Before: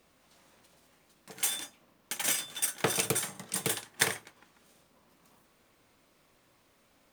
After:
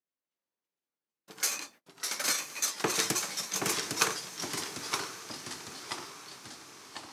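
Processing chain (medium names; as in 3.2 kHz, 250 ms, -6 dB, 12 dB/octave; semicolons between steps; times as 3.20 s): gate -54 dBFS, range -33 dB; high-pass 330 Hz 6 dB/octave; echo that smears into a reverb 979 ms, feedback 51%, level -12 dB; formant shift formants -6 st; ever faster or slower copies 427 ms, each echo -2 st, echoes 3, each echo -6 dB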